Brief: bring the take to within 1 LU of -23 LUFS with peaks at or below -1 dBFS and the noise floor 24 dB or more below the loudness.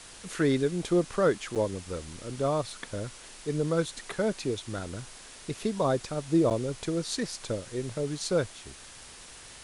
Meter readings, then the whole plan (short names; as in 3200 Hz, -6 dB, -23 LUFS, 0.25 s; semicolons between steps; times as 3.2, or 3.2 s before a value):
dropouts 2; longest dropout 7.9 ms; noise floor -48 dBFS; noise floor target -54 dBFS; loudness -30.0 LUFS; peak -13.5 dBFS; loudness target -23.0 LUFS
-> interpolate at 1.55/6.5, 7.9 ms; noise print and reduce 6 dB; gain +7 dB